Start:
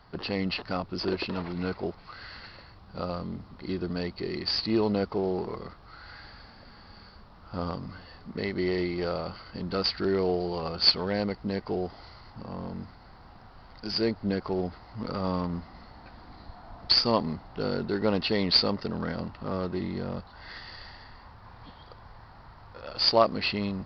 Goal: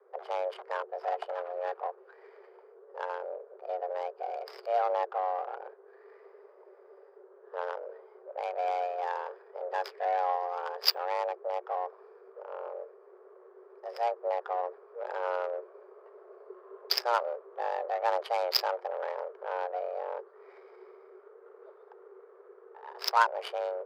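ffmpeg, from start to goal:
ffmpeg -i in.wav -af "adynamicsmooth=sensitivity=1.5:basefreq=570,afreqshift=360,volume=-2.5dB" out.wav

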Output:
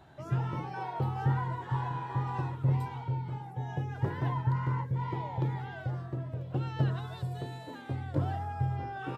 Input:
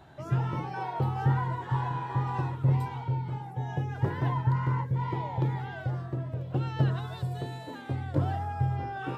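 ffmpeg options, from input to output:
ffmpeg -i in.wav -af "aresample=32000,aresample=44100,volume=-3dB" out.wav

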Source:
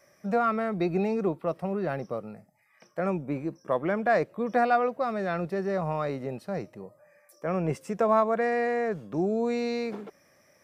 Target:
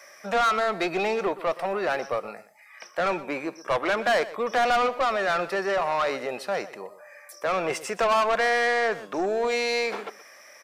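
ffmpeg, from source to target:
ffmpeg -i in.wav -filter_complex "[0:a]highpass=frequency=900:poles=1,asplit=2[link_01][link_02];[link_02]highpass=frequency=720:poles=1,volume=23dB,asoftclip=type=tanh:threshold=-15dB[link_03];[link_01][link_03]amix=inputs=2:normalize=0,lowpass=frequency=5400:poles=1,volume=-6dB,asplit=2[link_04][link_05];[link_05]adelay=122.4,volume=-16dB,highshelf=frequency=4000:gain=-2.76[link_06];[link_04][link_06]amix=inputs=2:normalize=0" out.wav

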